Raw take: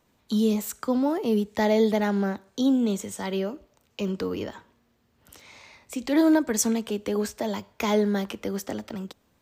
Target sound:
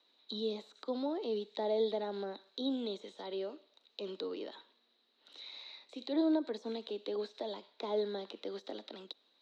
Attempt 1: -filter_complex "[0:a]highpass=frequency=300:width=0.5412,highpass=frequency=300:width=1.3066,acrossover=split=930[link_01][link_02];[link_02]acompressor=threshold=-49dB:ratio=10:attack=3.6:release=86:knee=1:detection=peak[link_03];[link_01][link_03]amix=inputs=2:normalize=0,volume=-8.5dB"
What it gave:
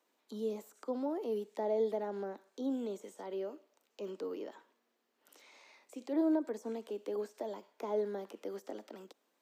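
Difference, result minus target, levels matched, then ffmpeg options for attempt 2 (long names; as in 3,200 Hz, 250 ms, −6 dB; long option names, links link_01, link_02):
4,000 Hz band −14.5 dB
-filter_complex "[0:a]highpass=frequency=300:width=0.5412,highpass=frequency=300:width=1.3066,acrossover=split=930[link_01][link_02];[link_02]acompressor=threshold=-49dB:ratio=10:attack=3.6:release=86:knee=1:detection=peak,lowpass=frequency=3900:width_type=q:width=14[link_03];[link_01][link_03]amix=inputs=2:normalize=0,volume=-8.5dB"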